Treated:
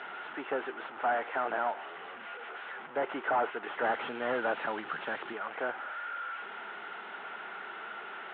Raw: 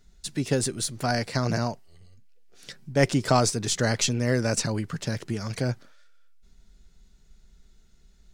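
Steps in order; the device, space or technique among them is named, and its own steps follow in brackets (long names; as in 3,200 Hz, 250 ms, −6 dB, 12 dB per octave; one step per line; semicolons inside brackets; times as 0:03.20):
digital answering machine (band-pass filter 380–3,200 Hz; linear delta modulator 16 kbit/s, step −38 dBFS; loudspeaker in its box 430–4,000 Hz, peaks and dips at 550 Hz −3 dB, 820 Hz +7 dB, 1,400 Hz +9 dB, 2,400 Hz −4 dB)
0:03.82–0:05.33: bass and treble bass +8 dB, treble +15 dB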